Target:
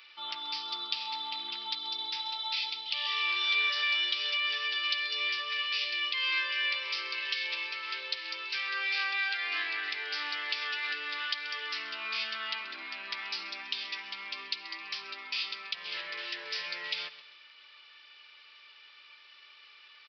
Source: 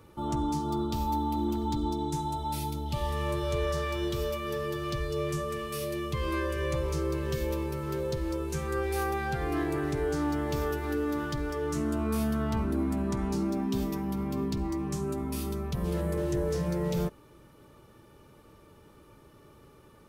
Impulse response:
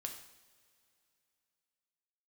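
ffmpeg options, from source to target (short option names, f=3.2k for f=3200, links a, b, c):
-filter_complex "[0:a]highpass=f=2.4k:t=q:w=2.1,aecho=1:1:132|264|396:0.141|0.0537|0.0204,aresample=11025,aresample=44100,asettb=1/sr,asplit=3[a][b][c];[a]atrim=end=3.064[d];[b]atrim=start=3.06:end=3.7,asetpts=PTS-STARTPTS,afade=t=in:d=0.004:c=qsin,afade=t=out:st=0.636:d=0.004:c=qsin,aecho=1:1:2.6:0.7,atrim=end_sample=28224[e];[c]atrim=start=3.696[f];[d][e]acrossfade=d=0.004:c1=hsin:c2=qsin[g];[g][f]acrossfade=d=0.004:c1=qsin:c2=hsin,asplit=2[h][i];[i]alimiter=level_in=9dB:limit=-24dB:level=0:latency=1:release=262,volume=-9dB,volume=1dB[j];[h][j]amix=inputs=2:normalize=0,crystalizer=i=2:c=0,volume=1dB"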